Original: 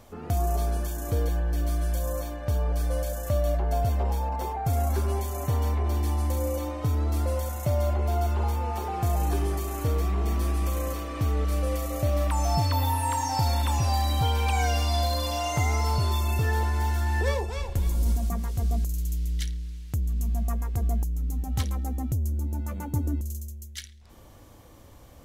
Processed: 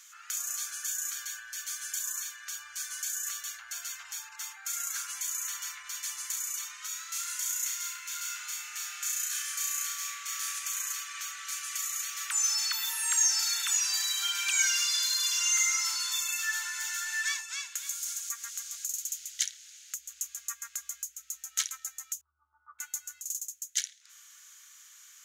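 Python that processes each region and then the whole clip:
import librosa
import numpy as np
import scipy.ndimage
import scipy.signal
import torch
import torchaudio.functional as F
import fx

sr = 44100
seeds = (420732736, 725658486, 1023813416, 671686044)

y = fx.chain(x, sr, fx.highpass(hz=1400.0, slope=12),
    fx.room_flutter(wall_m=5.5, rt60_s=0.46), at=(6.88, 10.59))
y = fx.chain(y, sr, fx.cheby1_lowpass(hz=1300.0, order=6),
    fx.env_flatten(amount_pct=50), at=(22.21, 22.79))
y = scipy.signal.sosfilt(scipy.signal.ellip(4, 1.0, 60, 1400.0, 'highpass', fs=sr, output='sos'), y)
y = fx.peak_eq(y, sr, hz=6700.0, db=14.5, octaves=0.38)
y = y * 10.0 ** (3.5 / 20.0)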